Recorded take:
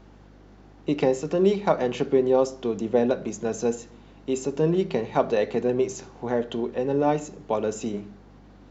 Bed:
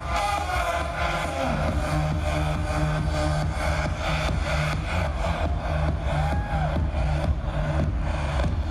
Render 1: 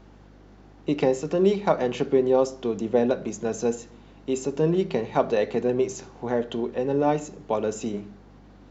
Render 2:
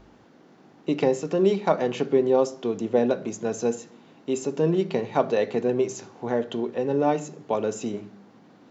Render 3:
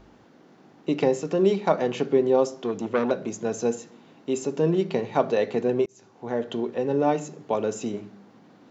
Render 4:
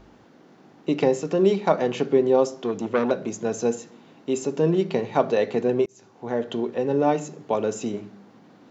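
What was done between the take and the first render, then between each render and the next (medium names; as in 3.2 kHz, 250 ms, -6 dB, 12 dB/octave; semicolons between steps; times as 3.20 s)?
no audible change
de-hum 50 Hz, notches 4
2.62–3.11 s: transformer saturation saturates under 970 Hz; 5.86–6.51 s: fade in
trim +1.5 dB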